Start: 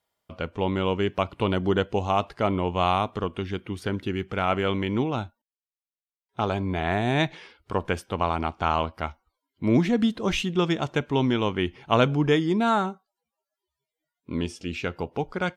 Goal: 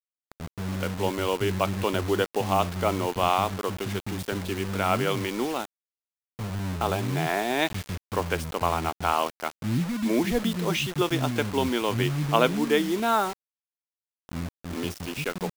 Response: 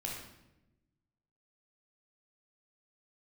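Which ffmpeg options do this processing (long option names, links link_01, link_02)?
-filter_complex "[0:a]acrossover=split=230[link_01][link_02];[link_02]adelay=420[link_03];[link_01][link_03]amix=inputs=2:normalize=0,acrusher=bits=5:mix=0:aa=0.000001"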